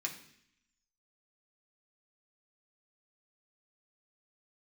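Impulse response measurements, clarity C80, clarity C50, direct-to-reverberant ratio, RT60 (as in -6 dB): 12.5 dB, 9.5 dB, -1.5 dB, 0.65 s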